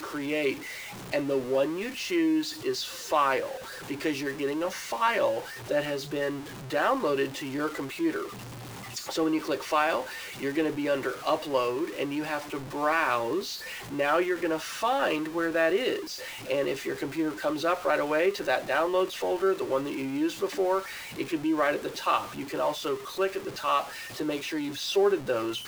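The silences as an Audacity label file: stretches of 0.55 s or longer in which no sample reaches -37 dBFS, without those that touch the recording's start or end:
8.270000	8.960000	silence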